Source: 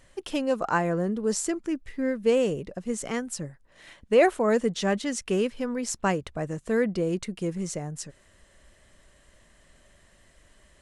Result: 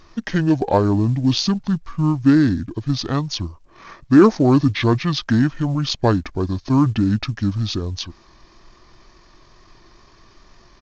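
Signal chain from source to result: wow and flutter 19 cents; in parallel at -9.5 dB: soft clip -20.5 dBFS, distortion -12 dB; on the sum: pitch shift -9 st; gain +7 dB; µ-law 128 kbps 16000 Hz

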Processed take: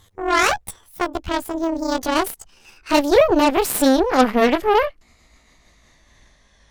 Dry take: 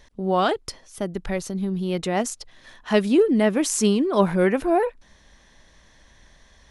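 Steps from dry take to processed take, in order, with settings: gliding pitch shift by +11.5 st ending unshifted; added harmonics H 5 -26 dB, 7 -22 dB, 8 -18 dB, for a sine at -6.5 dBFS; gain +4 dB

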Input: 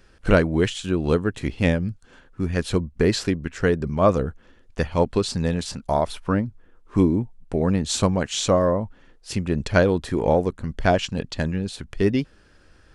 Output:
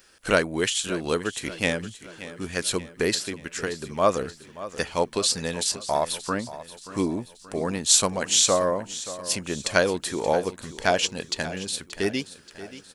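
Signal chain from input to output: RIAA curve recording; 3.14–3.99 compressor, threshold -25 dBFS, peak gain reduction 9 dB; feedback echo 0.579 s, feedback 51%, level -15 dB; gain -1 dB

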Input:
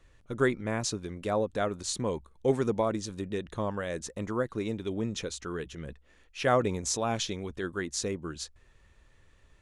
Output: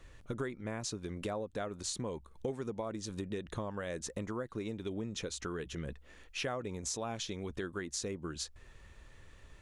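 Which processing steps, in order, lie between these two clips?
compressor 6:1, threshold -41 dBFS, peak gain reduction 20 dB; gain +5 dB

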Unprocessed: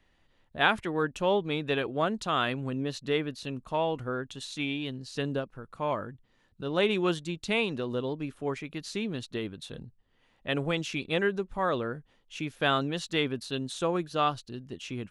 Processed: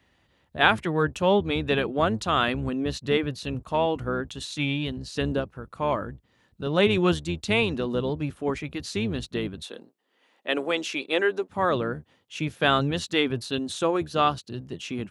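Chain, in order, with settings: octaver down 1 oct, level -5 dB; HPF 51 Hz 24 dB/oct, from 9.64 s 280 Hz, from 11.49 s 91 Hz; gain +4.5 dB

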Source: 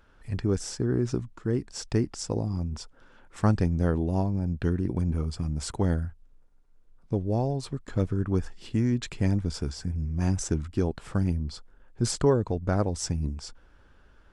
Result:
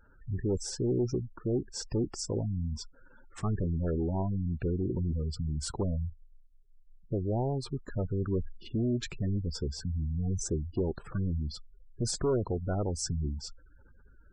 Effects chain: soft clip -26 dBFS, distortion -8 dB; spectral gate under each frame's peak -20 dB strong; dynamic EQ 370 Hz, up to +6 dB, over -50 dBFS, Q 4.5

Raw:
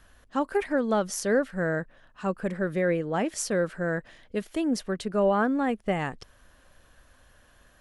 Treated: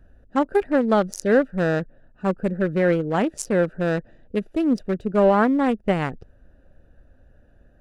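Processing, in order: Wiener smoothing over 41 samples; gain +7 dB

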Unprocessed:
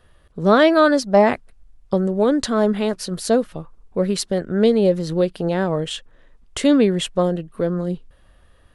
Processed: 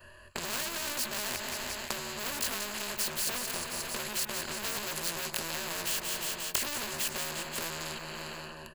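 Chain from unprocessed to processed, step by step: short-time reversal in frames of 48 ms; notch 3700 Hz, Q 5.3; sample leveller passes 5; ripple EQ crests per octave 1.4, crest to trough 14 dB; on a send at -20.5 dB: reverb RT60 0.85 s, pre-delay 0.141 s; on the sum: limiter -4.5 dBFS, peak gain reduction 9 dB; feedback echo 0.177 s, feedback 50%, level -17 dB; compressor 8:1, threshold -25 dBFS, peak gain reduction 17 dB; low shelf 400 Hz -11 dB; spectral compressor 4:1

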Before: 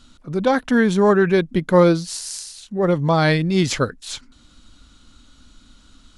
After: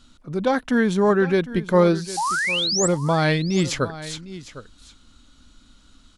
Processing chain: painted sound rise, 2.17–2.88, 770–8200 Hz -20 dBFS; echo 0.756 s -15.5 dB; gain -3 dB

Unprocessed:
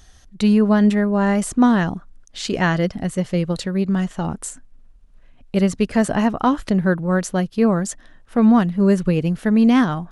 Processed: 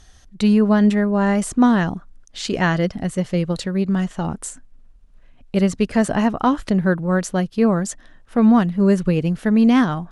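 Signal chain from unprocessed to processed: LPF 12000 Hz

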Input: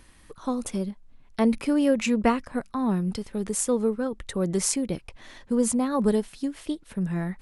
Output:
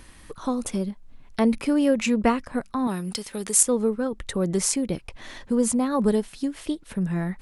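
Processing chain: 2.87–3.63 tilt +3 dB/oct; in parallel at 0 dB: compressor, threshold -38 dBFS, peak gain reduction 21.5 dB

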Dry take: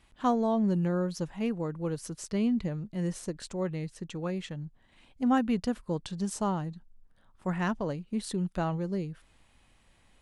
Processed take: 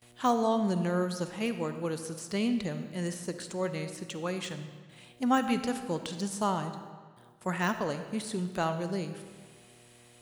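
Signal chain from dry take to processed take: tilt +2.5 dB/oct; buzz 120 Hz, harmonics 6, -63 dBFS -4 dB/oct; gate with hold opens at -51 dBFS; HPF 42 Hz; high shelf 9800 Hz +7 dB; de-esser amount 95%; reverb RT60 1.6 s, pre-delay 10 ms, DRR 8.5 dB; gain +3 dB

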